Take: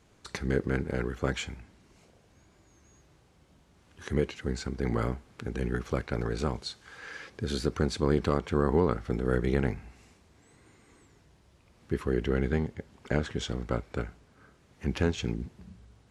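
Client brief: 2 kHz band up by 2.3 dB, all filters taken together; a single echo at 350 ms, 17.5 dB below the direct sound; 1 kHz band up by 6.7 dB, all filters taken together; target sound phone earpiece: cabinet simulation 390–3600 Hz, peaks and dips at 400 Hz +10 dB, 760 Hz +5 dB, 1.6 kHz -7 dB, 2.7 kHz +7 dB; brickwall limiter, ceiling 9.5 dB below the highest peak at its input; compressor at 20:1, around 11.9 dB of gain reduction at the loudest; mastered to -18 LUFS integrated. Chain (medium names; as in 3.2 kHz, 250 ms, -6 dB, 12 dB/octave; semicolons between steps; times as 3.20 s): peaking EQ 1 kHz +6 dB; peaking EQ 2 kHz +4 dB; compression 20:1, threshold -30 dBFS; peak limiter -23.5 dBFS; cabinet simulation 390–3600 Hz, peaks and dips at 400 Hz +10 dB, 760 Hz +5 dB, 1.6 kHz -7 dB, 2.7 kHz +7 dB; delay 350 ms -17.5 dB; trim +21.5 dB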